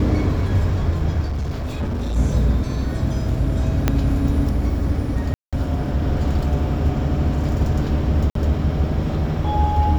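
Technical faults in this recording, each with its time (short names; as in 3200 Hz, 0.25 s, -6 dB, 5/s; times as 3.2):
1.24–2.17 clipped -20 dBFS
3.88 pop -4 dBFS
5.34–5.53 gap 0.186 s
8.3–8.35 gap 53 ms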